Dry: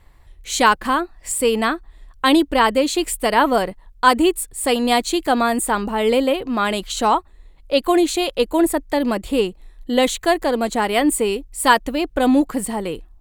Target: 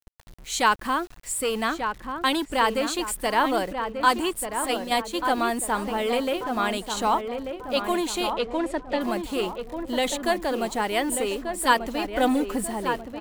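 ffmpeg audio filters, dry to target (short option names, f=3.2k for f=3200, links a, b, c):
-filter_complex "[0:a]acrossover=split=640|1900[a][b][c];[a]asoftclip=type=tanh:threshold=-20dB[d];[d][b][c]amix=inputs=3:normalize=0,asplit=3[e][f][g];[e]afade=t=out:st=4.65:d=0.02[h];[f]agate=range=-8dB:threshold=-19dB:ratio=16:detection=peak,afade=t=in:st=4.65:d=0.02,afade=t=out:st=5.13:d=0.02[i];[g]afade=t=in:st=5.13:d=0.02[j];[h][i][j]amix=inputs=3:normalize=0,acrusher=bits=6:mix=0:aa=0.000001,asettb=1/sr,asplit=3[k][l][m];[k]atrim=end=8.344[n];[l]atrim=start=8.34:end=9.01,asetpts=PTS-STARTPTS,afade=t=in:d=0.004:c=qsin,afade=t=out:st=0.666:d=0.004:c=qsin,lowpass=4.8k[o];[m]atrim=start=9.006[p];[n][o]acrossfade=d=0.004:c1=hsin:c2=qsin[q];[q][p]acrossfade=d=0.004:c1=qsin:c2=hsin,asettb=1/sr,asplit=3[r][s][t];[r]atrim=end=12.014[u];[s]atrim=start=12.01:end=12.67,asetpts=PTS-STARTPTS,afade=t=in:d=0.004:c=qsin,afade=t=out:st=0.656:d=0.004:c=qsin,aecho=1:1:4:0.7,atrim=end_sample=29106[v];[t]atrim=start=12.666[w];[u][v]acrossfade=d=0.004:c1=hsin:c2=qsin[x];[x][w]acrossfade=d=0.004:c1=qsin:c2=hsin,asplit=2[y][z];[z]adelay=1189,lowpass=f=1.6k:p=1,volume=-6dB,asplit=2[aa][ab];[ab]adelay=1189,lowpass=f=1.6k:p=1,volume=0.48,asplit=2[ac][ad];[ad]adelay=1189,lowpass=f=1.6k:p=1,volume=0.48,asplit=2[ae][af];[af]adelay=1189,lowpass=f=1.6k:p=1,volume=0.48,asplit=2[ag][ah];[ah]adelay=1189,lowpass=f=1.6k:p=1,volume=0.48,asplit=2[ai][aj];[aj]adelay=1189,lowpass=f=1.6k:p=1,volume=0.48[ak];[y][aa][ac][ae][ag][ai][ak]amix=inputs=7:normalize=0,volume=-5.5dB"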